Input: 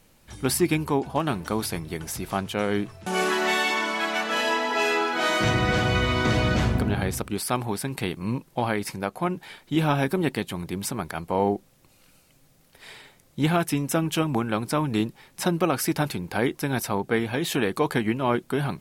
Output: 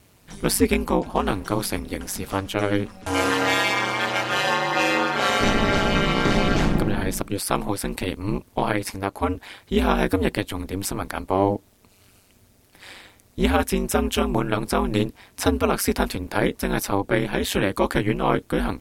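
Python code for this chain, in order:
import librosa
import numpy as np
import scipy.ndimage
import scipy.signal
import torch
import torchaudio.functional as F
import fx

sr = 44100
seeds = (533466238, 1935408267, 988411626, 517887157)

y = x * np.sin(2.0 * np.pi * 97.0 * np.arange(len(x)) / sr)
y = F.gain(torch.from_numpy(y), 5.5).numpy()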